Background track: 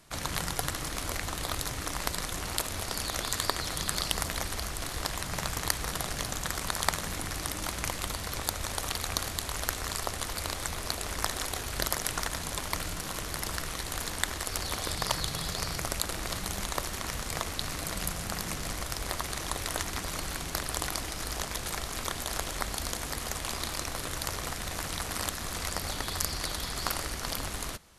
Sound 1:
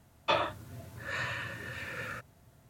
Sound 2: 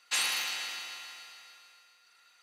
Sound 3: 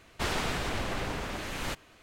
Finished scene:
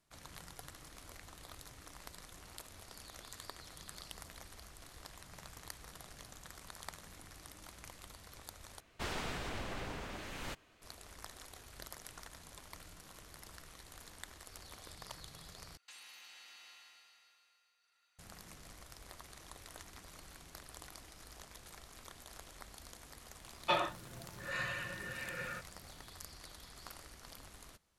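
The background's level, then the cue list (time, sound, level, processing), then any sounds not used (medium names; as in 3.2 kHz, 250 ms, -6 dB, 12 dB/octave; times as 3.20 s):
background track -19.5 dB
8.80 s: replace with 3 -9 dB
15.77 s: replace with 2 -14 dB + compression, threshold -38 dBFS
23.40 s: add 1 -5.5 dB + comb 5.6 ms, depth 76%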